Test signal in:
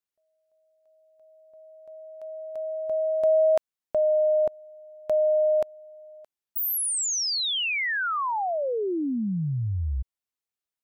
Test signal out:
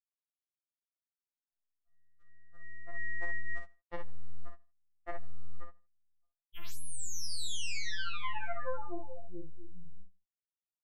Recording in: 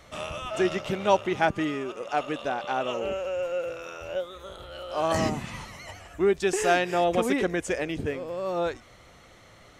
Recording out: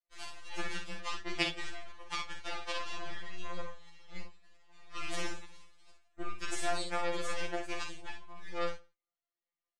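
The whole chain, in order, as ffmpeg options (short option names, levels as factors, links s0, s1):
-filter_complex "[0:a]lowshelf=f=480:g=-6.5,acompressor=threshold=0.0398:ratio=10:attack=6:release=59:knee=1:detection=peak,agate=range=0.0224:threshold=0.00355:ratio=3:release=22:detection=peak,aeval=exprs='0.168*(cos(1*acos(clip(val(0)/0.168,-1,1)))-cos(1*PI/2))+0.00841*(cos(2*acos(clip(val(0)/0.168,-1,1)))-cos(2*PI/2))+0.0596*(cos(3*acos(clip(val(0)/0.168,-1,1)))-cos(3*PI/2))+0.00944*(cos(4*acos(clip(val(0)/0.168,-1,1)))-cos(4*PI/2))+0.00188*(cos(5*acos(clip(val(0)/0.168,-1,1)))-cos(5*PI/2))':c=same,lowpass=f=9600:w=0.5412,lowpass=f=9600:w=1.3066,asplit=2[s0][s1];[s1]aecho=0:1:33|58:0.376|0.473[s2];[s0][s2]amix=inputs=2:normalize=0,flanger=delay=2.5:depth=1.2:regen=-39:speed=0.63:shape=triangular,asplit=2[s3][s4];[s4]aecho=0:1:80|160:0.075|0.0255[s5];[s3][s5]amix=inputs=2:normalize=0,afftfilt=real='re*2.83*eq(mod(b,8),0)':imag='im*2.83*eq(mod(b,8),0)':win_size=2048:overlap=0.75,volume=6.31"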